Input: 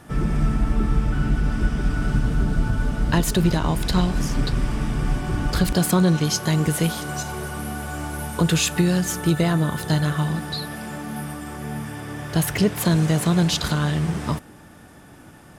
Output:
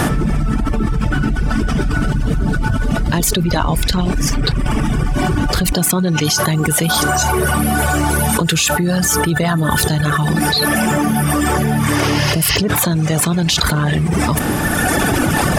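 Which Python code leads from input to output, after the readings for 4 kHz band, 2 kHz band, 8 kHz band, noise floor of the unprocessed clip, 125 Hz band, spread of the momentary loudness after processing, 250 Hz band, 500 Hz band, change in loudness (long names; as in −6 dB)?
+10.0 dB, +11.5 dB, +11.0 dB, −46 dBFS, +5.5 dB, 4 LU, +6.0 dB, +7.5 dB, +7.0 dB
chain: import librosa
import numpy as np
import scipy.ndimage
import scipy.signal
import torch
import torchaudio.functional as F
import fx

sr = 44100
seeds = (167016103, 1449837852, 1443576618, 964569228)

y = fx.spec_repair(x, sr, seeds[0], start_s=11.88, length_s=0.66, low_hz=730.0, high_hz=6700.0, source='both')
y = fx.dereverb_blind(y, sr, rt60_s=1.5)
y = fx.env_flatten(y, sr, amount_pct=100)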